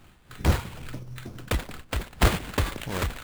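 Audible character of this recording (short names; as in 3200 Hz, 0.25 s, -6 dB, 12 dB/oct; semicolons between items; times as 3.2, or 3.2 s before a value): aliases and images of a low sample rate 5700 Hz, jitter 20%; noise-modulated level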